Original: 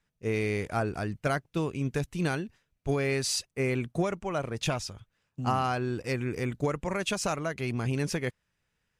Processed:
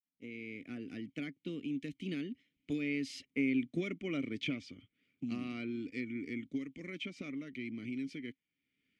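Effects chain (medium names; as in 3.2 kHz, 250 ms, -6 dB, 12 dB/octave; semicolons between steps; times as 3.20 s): fade-in on the opening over 1.19 s; Doppler pass-by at 3.81 s, 21 m/s, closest 11 m; vowel filter i; band-stop 1.6 kHz, Q 7.6; three bands compressed up and down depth 70%; trim +13 dB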